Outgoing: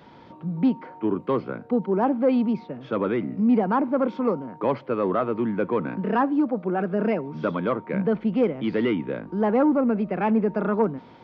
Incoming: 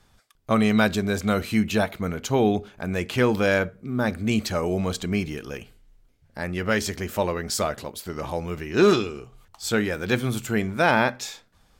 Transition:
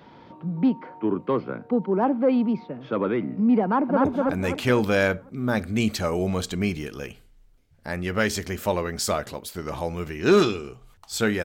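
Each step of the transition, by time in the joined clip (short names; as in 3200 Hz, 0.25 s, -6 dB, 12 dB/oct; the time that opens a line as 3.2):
outgoing
3.64–4.05 echo throw 0.25 s, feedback 45%, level -1.5 dB
4.05 switch to incoming from 2.56 s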